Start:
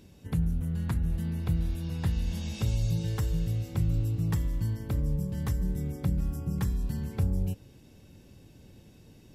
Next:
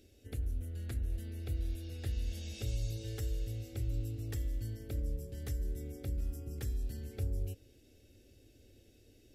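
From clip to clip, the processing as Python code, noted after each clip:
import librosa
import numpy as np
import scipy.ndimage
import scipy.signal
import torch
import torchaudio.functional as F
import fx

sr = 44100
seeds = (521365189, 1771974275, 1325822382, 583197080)

y = fx.fixed_phaser(x, sr, hz=410.0, stages=4)
y = F.gain(torch.from_numpy(y), -4.5).numpy()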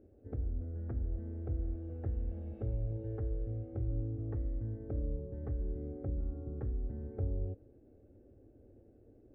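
y = scipy.signal.sosfilt(scipy.signal.butter(4, 1100.0, 'lowpass', fs=sr, output='sos'), x)
y = fx.low_shelf(y, sr, hz=120.0, db=-6.0)
y = F.gain(torch.from_numpy(y), 4.5).numpy()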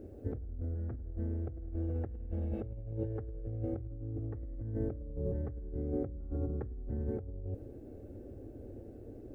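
y = fx.over_compress(x, sr, threshold_db=-44.0, ratio=-1.0)
y = F.gain(torch.from_numpy(y), 6.0).numpy()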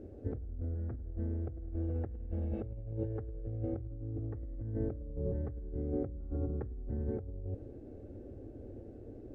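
y = fx.air_absorb(x, sr, metres=66.0)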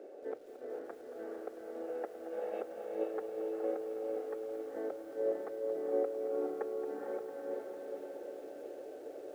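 y = scipy.signal.sosfilt(scipy.signal.butter(4, 480.0, 'highpass', fs=sr, output='sos'), x)
y = fx.echo_diffused(y, sr, ms=451, feedback_pct=55, wet_db=-3)
y = fx.echo_crushed(y, sr, ms=225, feedback_pct=80, bits=11, wet_db=-12.5)
y = F.gain(torch.from_numpy(y), 8.5).numpy()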